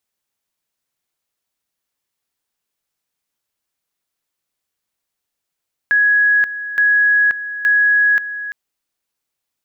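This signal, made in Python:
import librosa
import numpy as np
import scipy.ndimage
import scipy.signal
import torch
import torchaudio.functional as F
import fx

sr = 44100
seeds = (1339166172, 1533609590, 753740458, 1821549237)

y = fx.two_level_tone(sr, hz=1670.0, level_db=-10.0, drop_db=13.0, high_s=0.53, low_s=0.34, rounds=3)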